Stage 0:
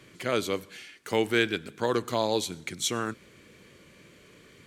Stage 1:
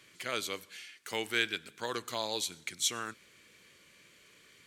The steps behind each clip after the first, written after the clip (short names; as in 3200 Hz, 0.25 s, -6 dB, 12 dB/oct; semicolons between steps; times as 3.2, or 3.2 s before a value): tilt shelf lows -7 dB; gain -7.5 dB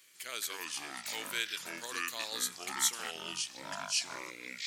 RIAA curve recording; echoes that change speed 0.155 s, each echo -5 st, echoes 3; gain -8.5 dB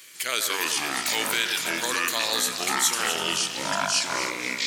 in parallel at +2 dB: negative-ratio compressor -40 dBFS, ratio -1; on the sum: echo with dull and thin repeats by turns 0.125 s, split 1700 Hz, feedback 70%, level -7 dB; gain +6 dB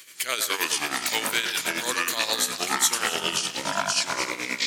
tremolo 9.5 Hz, depth 64%; gain +2.5 dB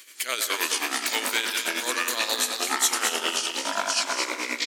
brick-wall FIR high-pass 210 Hz; echo 0.215 s -7 dB; gain -1 dB